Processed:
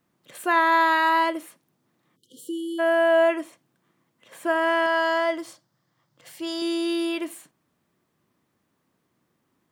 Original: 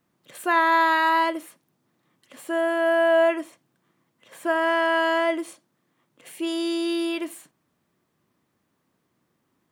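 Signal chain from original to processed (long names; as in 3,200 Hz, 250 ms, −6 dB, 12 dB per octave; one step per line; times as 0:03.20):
0:02.17–0:02.79: time-frequency box erased 520–2,900 Hz
0:04.86–0:06.62: thirty-one-band graphic EQ 125 Hz +10 dB, 250 Hz −9 dB, 400 Hz −10 dB, 2,500 Hz −7 dB, 5,000 Hz +8 dB, 10,000 Hz −7 dB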